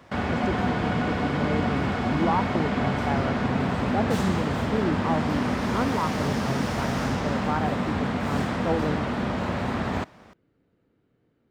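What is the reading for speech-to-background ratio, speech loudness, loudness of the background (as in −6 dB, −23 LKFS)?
−3.5 dB, −30.5 LKFS, −27.0 LKFS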